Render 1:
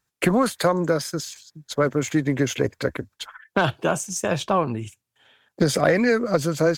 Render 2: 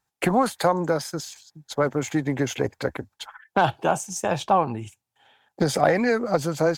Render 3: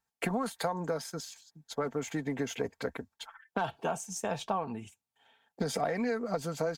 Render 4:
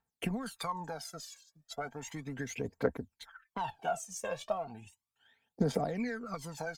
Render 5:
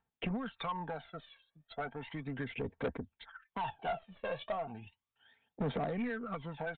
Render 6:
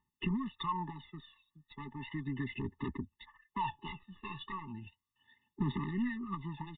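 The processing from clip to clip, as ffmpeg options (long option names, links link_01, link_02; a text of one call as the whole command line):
ffmpeg -i in.wav -af "equalizer=frequency=810:width=3.6:gain=12,volume=-3dB" out.wav
ffmpeg -i in.wav -af "aecho=1:1:4.4:0.46,acompressor=threshold=-20dB:ratio=4,volume=-8dB" out.wav
ffmpeg -i in.wav -af "aphaser=in_gain=1:out_gain=1:delay=1.9:decay=0.77:speed=0.35:type=triangular,volume=-7dB" out.wav
ffmpeg -i in.wav -af "aeval=exprs='0.178*(cos(1*acos(clip(val(0)/0.178,-1,1)))-cos(1*PI/2))+0.0112*(cos(6*acos(clip(val(0)/0.178,-1,1)))-cos(6*PI/2))':channel_layout=same,aresample=8000,asoftclip=type=tanh:threshold=-31dB,aresample=44100,volume=1.5dB" out.wav
ffmpeg -i in.wav -af "afftfilt=real='re*eq(mod(floor(b*sr/1024/430),2),0)':imag='im*eq(mod(floor(b*sr/1024/430),2),0)':win_size=1024:overlap=0.75,volume=3dB" out.wav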